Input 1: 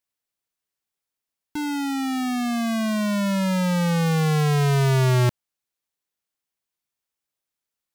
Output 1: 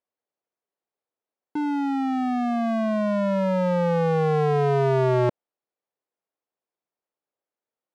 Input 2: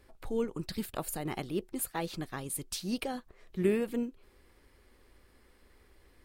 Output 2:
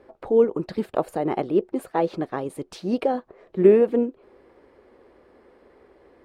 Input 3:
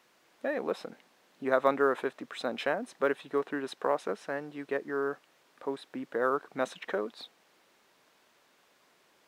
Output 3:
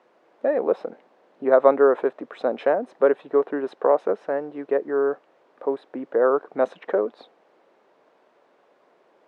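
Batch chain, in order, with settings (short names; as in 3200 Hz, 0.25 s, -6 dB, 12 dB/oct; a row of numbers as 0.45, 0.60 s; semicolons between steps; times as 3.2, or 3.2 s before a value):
band-pass 520 Hz, Q 1.2; match loudness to -23 LUFS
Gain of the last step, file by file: +6.5, +16.5, +12.0 dB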